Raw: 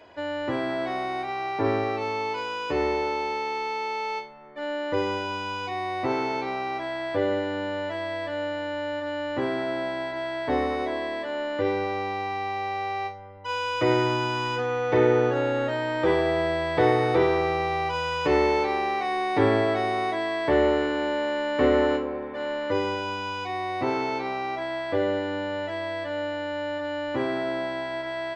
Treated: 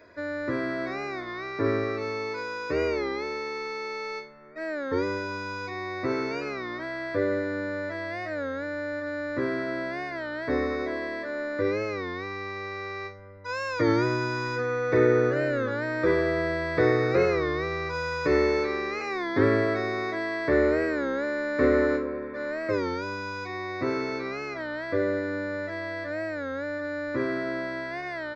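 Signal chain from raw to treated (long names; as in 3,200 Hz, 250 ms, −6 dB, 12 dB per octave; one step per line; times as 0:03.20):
parametric band 750 Hz +6.5 dB 1.5 octaves
phaser with its sweep stopped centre 3,000 Hz, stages 6
wow of a warped record 33 1/3 rpm, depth 160 cents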